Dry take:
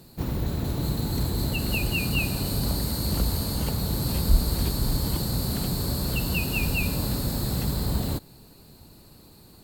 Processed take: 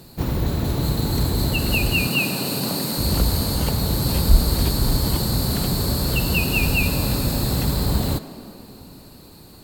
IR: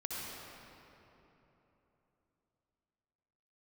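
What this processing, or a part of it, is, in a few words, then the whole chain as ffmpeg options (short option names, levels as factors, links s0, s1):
filtered reverb send: -filter_complex "[0:a]asplit=2[s0][s1];[s1]highpass=f=190:w=0.5412,highpass=f=190:w=1.3066,lowpass=8100[s2];[1:a]atrim=start_sample=2205[s3];[s2][s3]afir=irnorm=-1:irlink=0,volume=0.251[s4];[s0][s4]amix=inputs=2:normalize=0,asettb=1/sr,asplit=3[s5][s6][s7];[s5]atrim=end=2.074[s8];[s6]atrim=start=2.07:end=2.98,asetpts=PTS-STARTPTS,afade=t=in:d=0.004:c=qsin,afade=t=out:st=0.906:d=0.004:c=qsin,highpass=f=150:w=0.5412,highpass=f=150:w=1.3066[s9];[s7]atrim=start=2.976[s10];[s8][s9]acrossfade=d=0.004:c1=hsin:c2=qsin[s11];[s11][s10]acrossfade=d=0.004:c1=qsin:c2=hsin,volume=1.88"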